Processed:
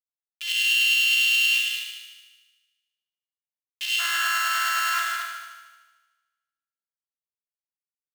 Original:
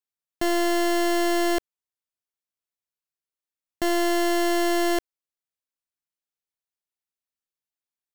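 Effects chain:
gap after every zero crossing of 0.24 ms
noise reduction from a noise print of the clip's start 8 dB
leveller curve on the samples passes 2
automatic gain control gain up to 15.5 dB
comparator with hysteresis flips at −39.5 dBFS
shaped tremolo saw up 9.6 Hz, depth 50%
four-pole ladder high-pass 2,700 Hz, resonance 75%, from 0:03.98 1,300 Hz, from 0:04.98 2,900 Hz
echo machine with several playback heads 75 ms, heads all three, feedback 41%, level −7 dB
four-comb reverb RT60 0.93 s, combs from 33 ms, DRR 1.5 dB

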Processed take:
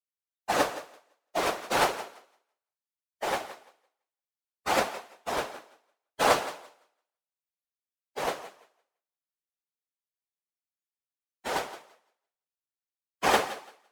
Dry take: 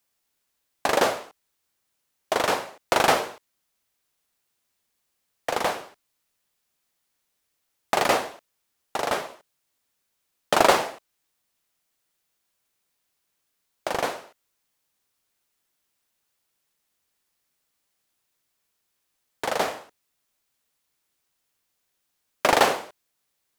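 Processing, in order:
noise reduction from a noise print of the clip's start 23 dB
random phases in short frames
feedback echo with a high-pass in the loop 287 ms, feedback 19%, high-pass 230 Hz, level −14 dB
time stretch by phase vocoder 0.59×

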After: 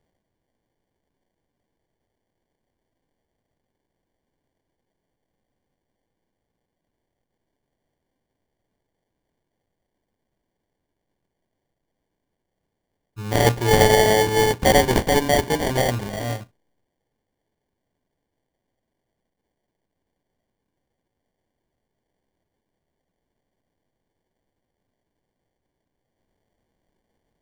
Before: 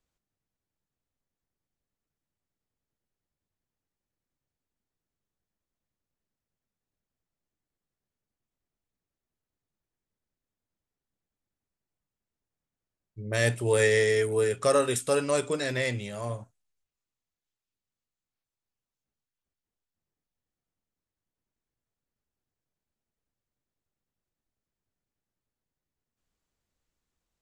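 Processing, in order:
high-shelf EQ 5,500 Hz +11 dB
sample-rate reduction 1,300 Hz, jitter 0%
level +6.5 dB

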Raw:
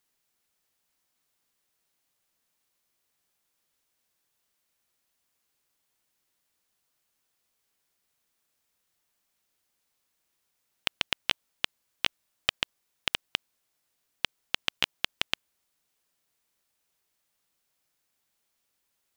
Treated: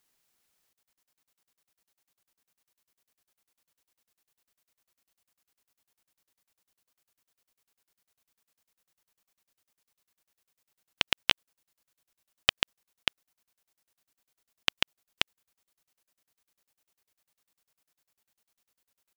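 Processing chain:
regular buffer underruns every 0.10 s, samples 2,048, zero, from 0:00.73
level +2.5 dB

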